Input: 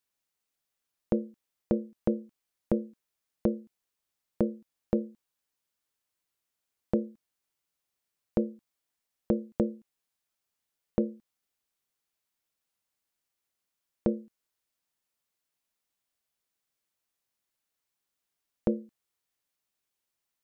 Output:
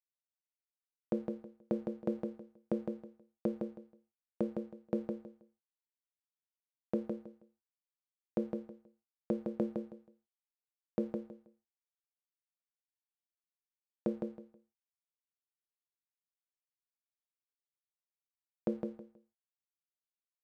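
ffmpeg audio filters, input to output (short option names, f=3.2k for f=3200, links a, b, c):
-filter_complex "[0:a]highpass=160,aeval=exprs='sgn(val(0))*max(abs(val(0))-0.00237,0)':c=same,asplit=2[a][b];[b]aecho=0:1:160|320|480:0.562|0.124|0.0272[c];[a][c]amix=inputs=2:normalize=0,volume=-6dB"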